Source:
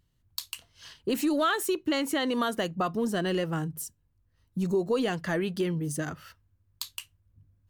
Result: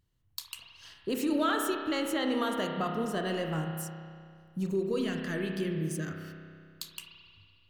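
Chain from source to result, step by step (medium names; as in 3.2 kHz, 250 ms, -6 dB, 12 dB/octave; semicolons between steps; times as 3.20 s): 4.71–6.86 s: peaking EQ 800 Hz -12 dB 0.71 oct; spring tank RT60 2.2 s, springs 31 ms, chirp 45 ms, DRR 2 dB; trim -4.5 dB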